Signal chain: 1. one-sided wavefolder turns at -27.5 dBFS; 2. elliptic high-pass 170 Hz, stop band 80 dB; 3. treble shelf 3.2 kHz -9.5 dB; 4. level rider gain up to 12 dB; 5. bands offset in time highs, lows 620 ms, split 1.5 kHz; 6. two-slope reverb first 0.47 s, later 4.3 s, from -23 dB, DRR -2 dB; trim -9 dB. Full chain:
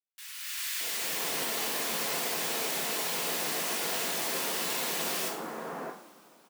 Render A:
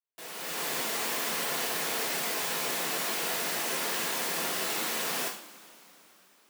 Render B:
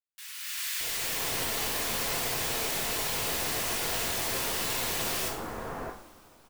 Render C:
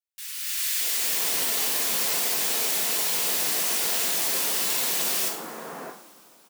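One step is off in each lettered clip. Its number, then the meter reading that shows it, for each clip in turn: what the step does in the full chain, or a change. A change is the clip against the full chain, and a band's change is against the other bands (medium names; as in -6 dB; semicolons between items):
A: 5, echo-to-direct 6.5 dB to 2.0 dB; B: 2, 125 Hz band +7.5 dB; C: 3, 8 kHz band +7.5 dB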